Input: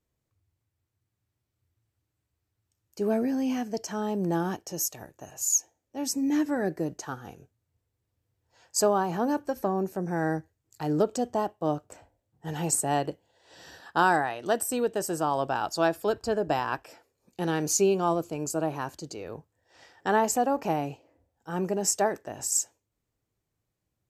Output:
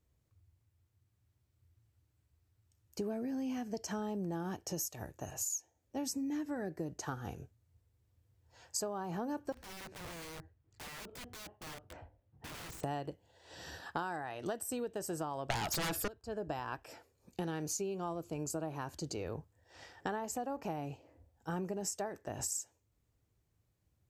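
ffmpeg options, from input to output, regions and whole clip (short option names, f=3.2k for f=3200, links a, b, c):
-filter_complex "[0:a]asettb=1/sr,asplit=3[a][b][c];[a]atrim=end=9.524[d];[b]atrim=start=9.52:end=12.84,asetpts=PTS-STARTPTS,afade=t=in:d=0.004:c=qsin,afade=t=out:st=3.316:d=0.004:c=qsin,lowpass=2.6k,acompressor=threshold=-39dB:ratio=4:attack=3.2:release=140:knee=1:detection=peak,aeval=exprs='(mod(141*val(0)+1,2)-1)/141':c=same[e];[c]atrim=start=12.836[f];[d][e]acrossfade=d=0.004:c1=hsin:c2=qsin[g];[g][f]acrossfade=d=0.004:c1=qsin:c2=hsin,asettb=1/sr,asplit=3[h][i][j];[h]atrim=end=15.504[k];[i]atrim=start=15.5:end=16.08,asetpts=PTS-STARTPTS,afade=t=in:d=0.004:c=qsin,afade=t=out:st=0.576:d=0.004:c=qsin,acontrast=55,highshelf=f=3.1k:g=9.5,aeval=exprs='0.596*sin(PI/2*7.08*val(0)/0.596)':c=same[l];[j]atrim=start=16.076[m];[k][l]acrossfade=d=0.004:c1=hsin:c2=qsin[n];[n][m]acrossfade=d=0.004:c1=qsin:c2=hsin,equalizer=f=69:t=o:w=1.7:g=9.5,acompressor=threshold=-35dB:ratio=12"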